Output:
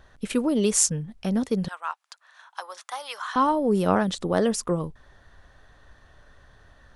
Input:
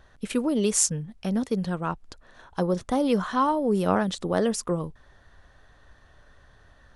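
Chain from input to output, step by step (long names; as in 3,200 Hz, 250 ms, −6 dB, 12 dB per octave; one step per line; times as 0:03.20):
0:01.68–0:03.36: high-pass filter 910 Hz 24 dB per octave
level +1.5 dB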